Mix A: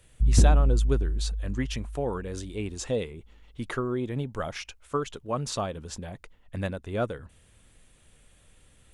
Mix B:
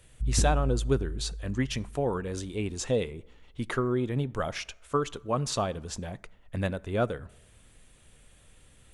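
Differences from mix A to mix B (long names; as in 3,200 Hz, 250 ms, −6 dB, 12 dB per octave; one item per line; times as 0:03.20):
background −8.5 dB
reverb: on, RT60 0.95 s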